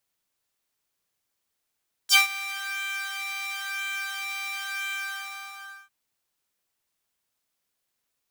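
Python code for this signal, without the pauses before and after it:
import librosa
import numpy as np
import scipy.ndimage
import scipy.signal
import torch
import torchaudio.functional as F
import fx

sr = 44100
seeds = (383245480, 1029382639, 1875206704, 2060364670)

y = fx.sub_patch_pwm(sr, seeds[0], note=79, wave2='triangle', interval_st=7, detune_cents=29, level2_db=-3.0, sub_db=-24, noise_db=-11.0, kind='highpass', cutoff_hz=1400.0, q=3.1, env_oct=2.5, env_decay_s=0.07, env_sustain_pct=20, attack_ms=39.0, decay_s=0.14, sustain_db=-19, release_s=0.98, note_s=2.82, lfo_hz=0.98, width_pct=35, width_swing_pct=20)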